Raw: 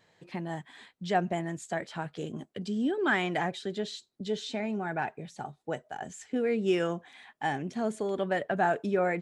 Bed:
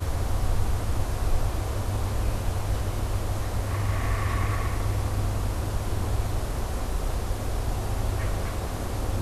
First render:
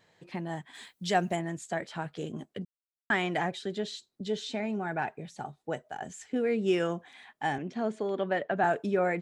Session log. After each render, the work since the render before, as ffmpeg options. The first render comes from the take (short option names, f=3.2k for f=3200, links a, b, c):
-filter_complex "[0:a]asplit=3[a][b][c];[a]afade=t=out:st=0.73:d=0.02[d];[b]aemphasis=mode=production:type=75kf,afade=t=in:st=0.73:d=0.02,afade=t=out:st=1.35:d=0.02[e];[c]afade=t=in:st=1.35:d=0.02[f];[d][e][f]amix=inputs=3:normalize=0,asettb=1/sr,asplit=3[g][h][i];[g]atrim=end=7.584[j];[h]atrim=start=7.58:end=8.64,asetpts=PTS-STARTPTS,afade=t=in:d=0.004:c=qsin,afade=t=out:st=1.056:d=0.004:c=qsin,highpass=160,lowpass=4.5k[k];[i]atrim=start=8.636[l];[j][k]acrossfade=d=0.004:c1=hsin:c2=qsin[m];[m][l]acrossfade=d=0.004:c1=qsin:c2=hsin,asplit=3[n][o][p];[n]atrim=end=2.65,asetpts=PTS-STARTPTS,afade=t=out:st=2.646:d=0.004:c=hsin[q];[o]atrim=start=2.65:end=3.1,asetpts=PTS-STARTPTS,volume=0[r];[p]atrim=start=3.1,asetpts=PTS-STARTPTS,afade=t=in:d=0.004:c=hsin[s];[q][r][s]concat=n=3:v=0:a=1"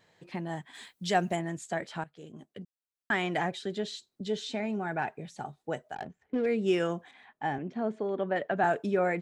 -filter_complex "[0:a]asettb=1/sr,asplit=3[a][b][c];[a]atrim=end=5.954[d];[b]atrim=start=5.95:end=6.46,asetpts=PTS-STARTPTS,afade=t=in:d=0.004:c=qsin,afade=t=out:st=0.506:d=0.004:c=qsin,adynamicsmooth=sensitivity=6:basefreq=600[e];[c]atrim=start=6.456[f];[d][e]acrossfade=d=0.004:c1=hsin:c2=qsin[g];[g][f]acrossfade=d=0.004:c1=qsin:c2=hsin,asettb=1/sr,asplit=3[h][i][j];[h]atrim=end=7.114[k];[i]atrim=start=7.11:end=8.36,asetpts=PTS-STARTPTS,afade=t=in:d=0.004:c=qsin,afade=t=out:st=1.246:d=0.004:c=qsin,lowpass=f=1.6k:p=1[l];[j]atrim=start=8.356[m];[k][l]acrossfade=d=0.004:c1=hsin:c2=qsin[n];[n][m]acrossfade=d=0.004:c1=qsin:c2=hsin,asplit=2[o][p];[o]atrim=end=2.04,asetpts=PTS-STARTPTS,afade=t=out:st=2.036:d=0.004:c=hsin:silence=0.158489[q];[p]atrim=start=2.04,asetpts=PTS-STARTPTS,afade=t=in:d=1.3:silence=0.158489[r];[q][r]concat=n=2:v=0:a=1"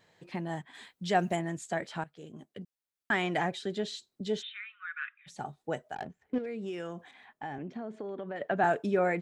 -filter_complex "[0:a]asettb=1/sr,asplit=3[a][b][c];[a]atrim=end=0.624[d];[b]atrim=start=0.62:end=1.19,asetpts=PTS-STARTPTS,afade=t=in:d=0.004:c=qsin,afade=t=out:st=0.566:d=0.004:c=qsin,highshelf=f=4.2k:g=-8[e];[c]atrim=start=1.186[f];[d][e]acrossfade=d=0.004:c1=hsin:c2=qsin[g];[g][f]acrossfade=d=0.004:c1=qsin:c2=hsin,asplit=3[h][i][j];[h]afade=t=out:st=4.41:d=0.02[k];[i]asuperpass=centerf=2100:order=20:qfactor=0.83,afade=t=in:st=4.41:d=0.02,afade=t=out:st=5.26:d=0.02[l];[j]afade=t=in:st=5.26:d=0.02[m];[k][l][m]amix=inputs=3:normalize=0,asettb=1/sr,asplit=3[n][o][p];[n]atrim=end=6.384[q];[o]atrim=start=6.38:end=8.41,asetpts=PTS-STARTPTS,afade=t=in:d=0.004:c=qsin,afade=t=out:st=2.026:d=0.004:c=qsin,acompressor=threshold=-35dB:ratio=5:attack=3.2:release=140:knee=1:detection=peak[r];[p]atrim=start=8.406[s];[q][r]acrossfade=d=0.004:c1=hsin:c2=qsin[t];[t][s]acrossfade=d=0.004:c1=qsin:c2=hsin"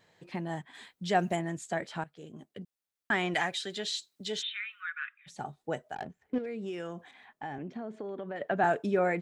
-filter_complex "[0:a]asettb=1/sr,asplit=3[a][b][c];[a]atrim=end=3.344[d];[b]atrim=start=3.34:end=4.9,asetpts=PTS-STARTPTS,afade=t=in:d=0.004:c=qsin,afade=t=out:st=1.556:d=0.004:c=qsin,tiltshelf=f=970:g=-8[e];[c]atrim=start=4.896[f];[d][e]acrossfade=d=0.004:c1=hsin:c2=qsin[g];[g][f]acrossfade=d=0.004:c1=qsin:c2=hsin"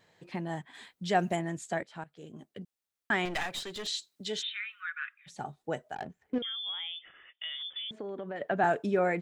-filter_complex "[0:a]asettb=1/sr,asplit=3[a][b][c];[a]atrim=end=3.254[d];[b]atrim=start=3.25:end=3.87,asetpts=PTS-STARTPTS,afade=t=in:d=0.004:c=qsin,afade=t=out:st=0.616:d=0.004:c=qsin,aeval=exprs='clip(val(0),-1,0.0119)':c=same[e];[c]atrim=start=3.866[f];[d][e]acrossfade=d=0.004:c1=hsin:c2=qsin[g];[g][f]acrossfade=d=0.004:c1=qsin:c2=hsin,asettb=1/sr,asplit=3[h][i][j];[h]atrim=end=6.424[k];[i]atrim=start=6.42:end=7.91,asetpts=PTS-STARTPTS,afade=t=in:d=0.004:c=qsin,afade=t=out:st=1.486:d=0.004:c=qsin,lowpass=f=3.1k:t=q:w=0.5098,lowpass=f=3.1k:t=q:w=0.6013,lowpass=f=3.1k:t=q:w=0.9,lowpass=f=3.1k:t=q:w=2.563,afreqshift=-3700[l];[j]atrim=start=7.906[m];[k][l]acrossfade=d=0.004:c1=hsin:c2=qsin[n];[n][m]acrossfade=d=0.004:c1=qsin:c2=hsin,asplit=2[o][p];[o]atrim=end=1.83,asetpts=PTS-STARTPTS,afade=t=out:st=1.826:d=0.004:c=hsin:silence=0.177828[q];[p]atrim=start=1.83,asetpts=PTS-STARTPTS,afade=t=in:d=0.42:silence=0.177828[r];[q][r]concat=n=2:v=0:a=1"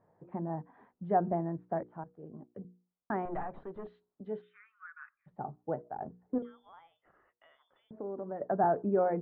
-af "lowpass=f=1.1k:w=0.5412,lowpass=f=1.1k:w=1.3066,bandreject=f=60:t=h:w=6,bandreject=f=120:t=h:w=6,bandreject=f=180:t=h:w=6,bandreject=f=240:t=h:w=6,bandreject=f=300:t=h:w=6,bandreject=f=360:t=h:w=6,bandreject=f=420:t=h:w=6,bandreject=f=480:t=h:w=6"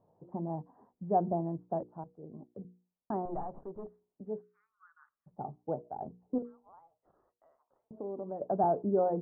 -af "lowpass=f=1k:w=0.5412,lowpass=f=1k:w=1.3066"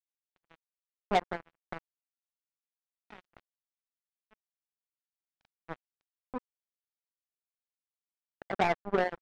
-af "acrusher=bits=3:mix=0:aa=0.5"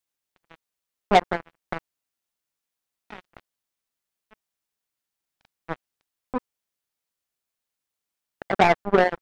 -af "volume=10dB"